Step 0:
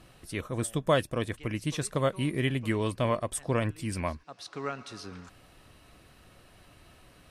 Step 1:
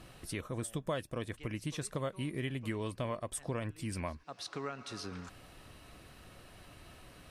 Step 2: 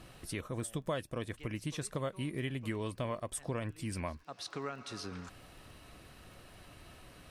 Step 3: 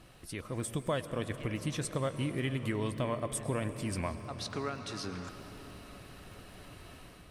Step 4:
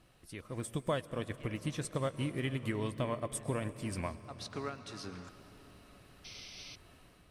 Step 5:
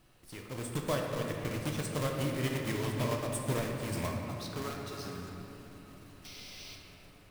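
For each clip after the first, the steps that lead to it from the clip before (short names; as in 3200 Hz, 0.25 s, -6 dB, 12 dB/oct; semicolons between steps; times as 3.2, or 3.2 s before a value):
compressor 2.5:1, threshold -40 dBFS, peak gain reduction 14 dB; gain +1.5 dB
crackle 13/s -50 dBFS
AGC gain up to 6 dB; on a send at -10 dB: reverb RT60 5.9 s, pre-delay 97 ms; on the sum: gain -3 dB
painted sound noise, 6.24–6.76, 2000–6200 Hz -43 dBFS; upward expander 1.5:1, over -45 dBFS
block floating point 3-bit; shoebox room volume 140 m³, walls hard, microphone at 0.4 m; gain -1 dB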